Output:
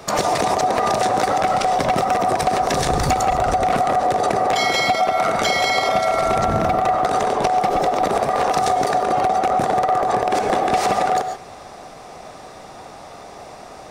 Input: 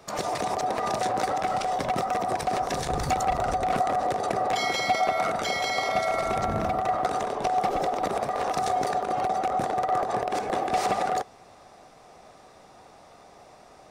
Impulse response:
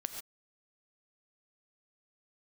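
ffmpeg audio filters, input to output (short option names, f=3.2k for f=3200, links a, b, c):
-filter_complex "[0:a]acontrast=90,asplit=2[a][b];[1:a]atrim=start_sample=2205[c];[b][c]afir=irnorm=-1:irlink=0,volume=0dB[d];[a][d]amix=inputs=2:normalize=0,acompressor=threshold=-15dB:ratio=6"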